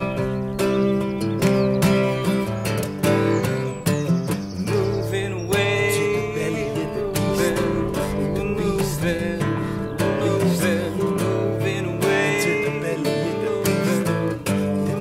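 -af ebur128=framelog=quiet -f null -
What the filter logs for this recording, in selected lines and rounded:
Integrated loudness:
  I:         -21.8 LUFS
  Threshold: -31.8 LUFS
Loudness range:
  LRA:         1.8 LU
  Threshold: -41.9 LUFS
  LRA low:   -22.7 LUFS
  LRA high:  -20.9 LUFS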